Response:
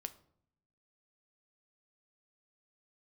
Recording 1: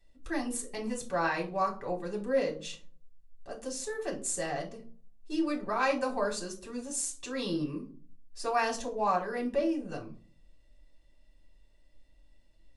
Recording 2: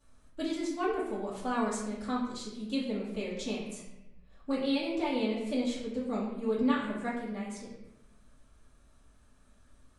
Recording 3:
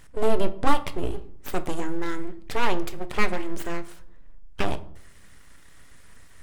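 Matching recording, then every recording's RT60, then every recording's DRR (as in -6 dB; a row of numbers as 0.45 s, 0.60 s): 3; 0.45 s, 0.95 s, 0.65 s; -1.5 dB, -10.0 dB, 9.0 dB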